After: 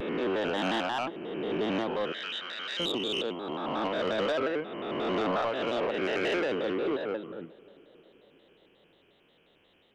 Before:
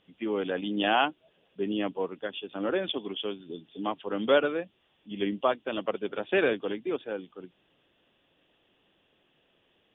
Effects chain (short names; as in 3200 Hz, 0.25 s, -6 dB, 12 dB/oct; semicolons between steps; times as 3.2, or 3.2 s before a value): spectral swells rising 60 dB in 1.85 s; limiter -17 dBFS, peak gain reduction 9.5 dB; soft clip -23 dBFS, distortion -15 dB; 2.12–2.8 Butterworth band-pass 3200 Hz, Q 0.57; on a send: darkening echo 0.283 s, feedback 74%, low-pass 1900 Hz, level -23.5 dB; on the sum: shaped vibrato square 5.6 Hz, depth 160 cents